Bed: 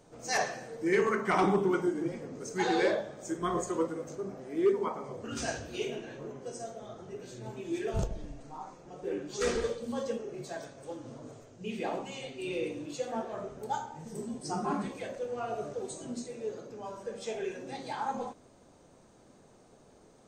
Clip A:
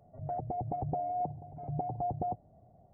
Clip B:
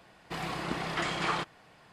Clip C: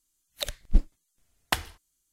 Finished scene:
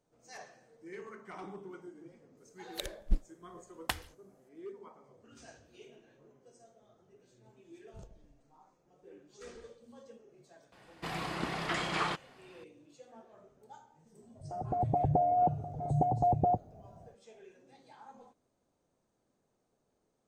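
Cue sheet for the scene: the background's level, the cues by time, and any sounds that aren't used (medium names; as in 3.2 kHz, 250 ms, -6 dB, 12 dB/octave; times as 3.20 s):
bed -19.5 dB
2.37 s: add C -8 dB
10.72 s: add B -2 dB
14.22 s: add A -8.5 dB + level rider gain up to 15 dB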